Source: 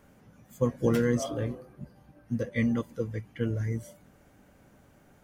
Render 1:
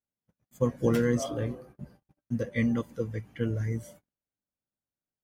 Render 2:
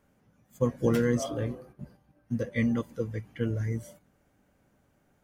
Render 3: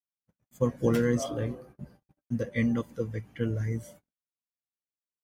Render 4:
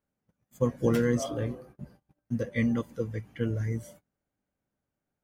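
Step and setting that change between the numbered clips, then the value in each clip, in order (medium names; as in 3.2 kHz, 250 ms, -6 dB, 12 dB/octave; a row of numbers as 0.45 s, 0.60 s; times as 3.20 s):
gate, range: -40 dB, -9 dB, -56 dB, -27 dB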